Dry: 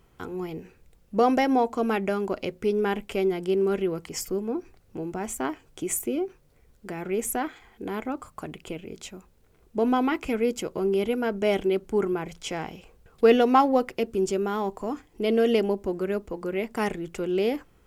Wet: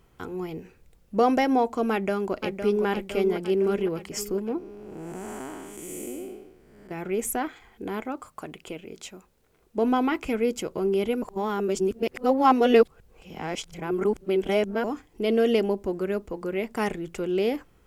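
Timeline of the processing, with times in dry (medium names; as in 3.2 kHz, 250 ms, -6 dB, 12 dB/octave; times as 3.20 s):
1.91–2.86 s: echo throw 510 ms, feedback 60%, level -7.5 dB
4.58–6.91 s: spectral blur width 364 ms
8.02–9.78 s: bass shelf 170 Hz -9 dB
11.22–14.84 s: reverse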